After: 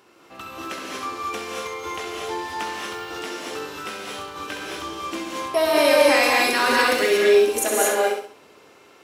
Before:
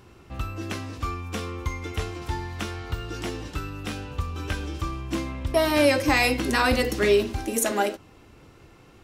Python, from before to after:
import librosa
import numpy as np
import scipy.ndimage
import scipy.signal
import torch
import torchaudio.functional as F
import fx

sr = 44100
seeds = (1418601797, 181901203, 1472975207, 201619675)

y = scipy.signal.sosfilt(scipy.signal.butter(2, 370.0, 'highpass', fs=sr, output='sos'), x)
y = fx.echo_feedback(y, sr, ms=66, feedback_pct=36, wet_db=-7)
y = fx.rev_gated(y, sr, seeds[0], gate_ms=260, shape='rising', drr_db=-2.5)